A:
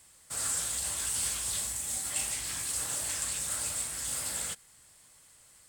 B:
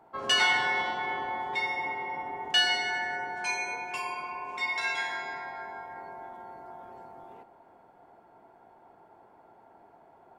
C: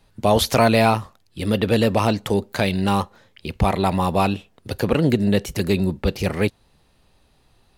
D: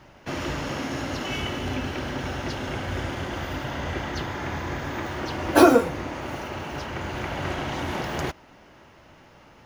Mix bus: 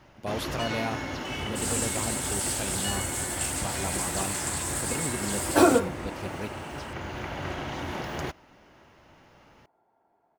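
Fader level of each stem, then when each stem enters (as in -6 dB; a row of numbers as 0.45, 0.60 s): +1.0, -13.0, -16.0, -4.5 dB; 1.25, 0.30, 0.00, 0.00 s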